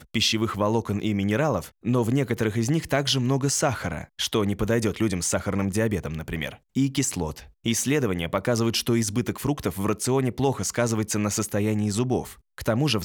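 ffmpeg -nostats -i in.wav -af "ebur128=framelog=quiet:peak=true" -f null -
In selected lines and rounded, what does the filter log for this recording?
Integrated loudness:
  I:         -25.1 LUFS
  Threshold: -35.1 LUFS
Loudness range:
  LRA:         1.9 LU
  Threshold: -45.1 LUFS
  LRA low:   -26.2 LUFS
  LRA high:  -24.3 LUFS
True peak:
  Peak:       -9.1 dBFS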